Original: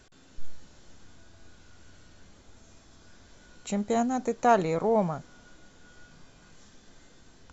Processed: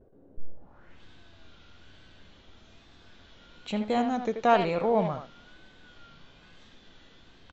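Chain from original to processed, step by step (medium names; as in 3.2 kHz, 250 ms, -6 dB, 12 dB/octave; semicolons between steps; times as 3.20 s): speakerphone echo 80 ms, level -7 dB; vibrato 1.1 Hz 78 cents; low-pass sweep 500 Hz -> 3.4 kHz, 0.53–1.03 s; trim -1 dB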